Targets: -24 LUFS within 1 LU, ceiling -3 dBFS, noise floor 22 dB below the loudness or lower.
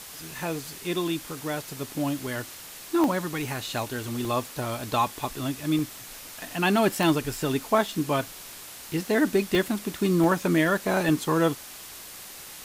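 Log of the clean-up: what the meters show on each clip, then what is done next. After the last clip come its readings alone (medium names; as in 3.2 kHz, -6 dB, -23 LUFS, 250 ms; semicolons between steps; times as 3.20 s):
dropouts 8; longest dropout 1.1 ms; noise floor -43 dBFS; noise floor target -49 dBFS; loudness -26.5 LUFS; peak level -9.5 dBFS; loudness target -24.0 LUFS
-> interpolate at 2.27/3.04/4.25/5.79/7.03/9.55/10.24/11.09 s, 1.1 ms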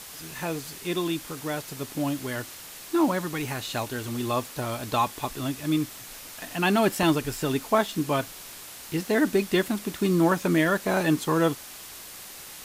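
dropouts 0; noise floor -43 dBFS; noise floor target -49 dBFS
-> noise reduction 6 dB, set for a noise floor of -43 dBFS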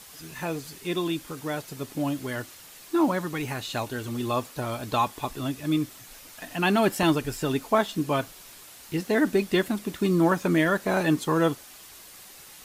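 noise floor -48 dBFS; noise floor target -49 dBFS
-> noise reduction 6 dB, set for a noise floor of -48 dBFS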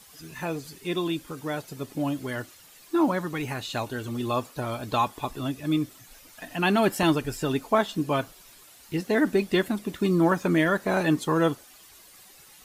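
noise floor -52 dBFS; loudness -27.0 LUFS; peak level -9.5 dBFS; loudness target -24.0 LUFS
-> trim +3 dB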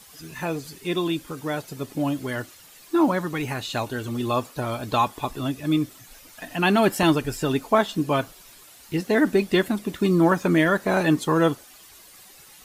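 loudness -24.0 LUFS; peak level -6.5 dBFS; noise floor -49 dBFS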